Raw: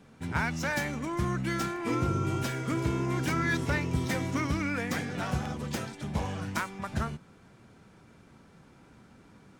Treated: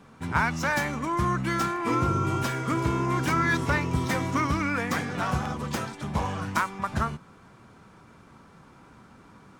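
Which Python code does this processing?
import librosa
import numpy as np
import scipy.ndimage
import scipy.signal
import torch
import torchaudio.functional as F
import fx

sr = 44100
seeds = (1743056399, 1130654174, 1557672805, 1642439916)

y = fx.peak_eq(x, sr, hz=1100.0, db=8.0, octaves=0.72)
y = y * 10.0 ** (2.5 / 20.0)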